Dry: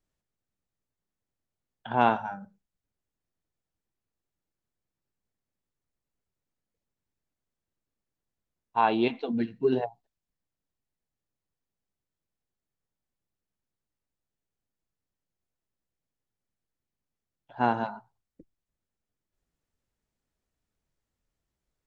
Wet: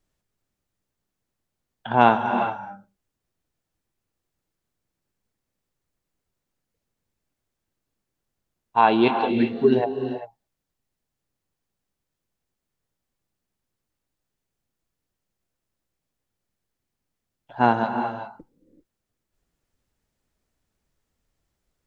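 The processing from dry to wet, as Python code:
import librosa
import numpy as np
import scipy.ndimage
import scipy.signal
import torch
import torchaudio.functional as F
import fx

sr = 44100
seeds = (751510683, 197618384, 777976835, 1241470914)

y = fx.rev_gated(x, sr, seeds[0], gate_ms=420, shape='rising', drr_db=7.0)
y = y * 10.0 ** (6.5 / 20.0)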